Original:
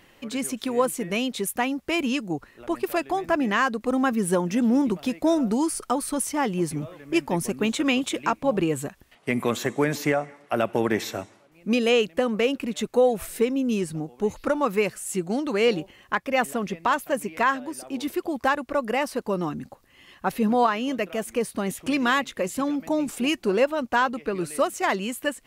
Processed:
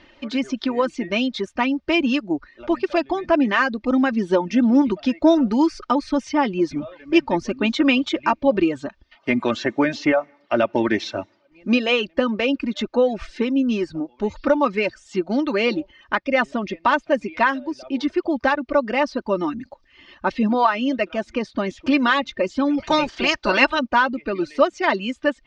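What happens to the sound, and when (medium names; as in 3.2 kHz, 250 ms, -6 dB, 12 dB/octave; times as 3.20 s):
22.77–23.78 s: spectral peaks clipped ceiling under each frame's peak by 23 dB
whole clip: steep low-pass 5.4 kHz 36 dB/octave; reverb removal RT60 0.61 s; comb 3.3 ms, depth 59%; trim +3.5 dB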